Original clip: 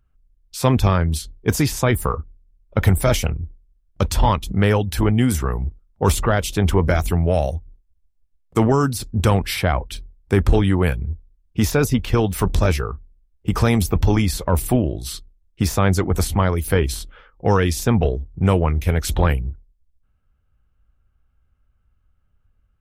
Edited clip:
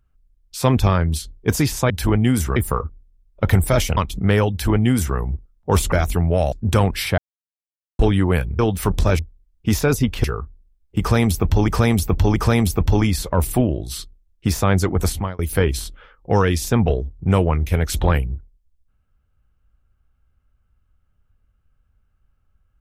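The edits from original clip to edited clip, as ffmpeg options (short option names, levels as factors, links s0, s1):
-filter_complex "[0:a]asplit=14[s0][s1][s2][s3][s4][s5][s6][s7][s8][s9][s10][s11][s12][s13];[s0]atrim=end=1.902[s14];[s1]atrim=start=4.838:end=5.502[s15];[s2]atrim=start=1.898:end=3.312[s16];[s3]atrim=start=4.298:end=6.252[s17];[s4]atrim=start=6.878:end=7.482[s18];[s5]atrim=start=9.028:end=9.69,asetpts=PTS-STARTPTS,afade=t=out:st=0.658:d=0.004:c=hsin[s19];[s6]atrim=start=9.69:end=10.5,asetpts=PTS-STARTPTS,volume=0[s20];[s7]atrim=start=10.5:end=11.102,asetpts=PTS-STARTPTS,afade=t=in:d=0.004:c=hsin[s21];[s8]atrim=start=12.148:end=12.752[s22];[s9]atrim=start=11.098:end=12.152[s23];[s10]atrim=start=12.748:end=14.192[s24];[s11]atrim=start=13.508:end=14.192[s25];[s12]atrim=start=13.508:end=16.54,asetpts=PTS-STARTPTS,afade=t=out:st=2.732:d=0.3[s26];[s13]atrim=start=16.54,asetpts=PTS-STARTPTS,afade=t=in:d=0.004:c=hsin[s27];[s14][s15]acrossfade=d=0.004:c1=hsin:c2=hsin[s28];[s28][s16]acrossfade=d=0.004:c1=hsin:c2=hsin[s29];[s29][s17]acrossfade=d=0.004:c1=hsin:c2=hsin[s30];[s30][s18]acrossfade=d=0.004:c1=hsin:c2=hsin[s31];[s19][s20][s21]concat=n=3:v=0:a=1[s32];[s31][s32]acrossfade=d=0.004:c1=hsin:c2=hsin[s33];[s33][s22]acrossfade=d=0.004:c1=hsin:c2=hsin[s34];[s34][s23]acrossfade=d=0.004:c1=hsin:c2=hsin[s35];[s35][s24]acrossfade=d=0.004:c1=hsin:c2=hsin[s36];[s36][s25]acrossfade=d=0.004:c1=hsin:c2=hsin[s37];[s26][s27]concat=n=2:v=0:a=1[s38];[s37][s38]acrossfade=d=0.004:c1=hsin:c2=hsin"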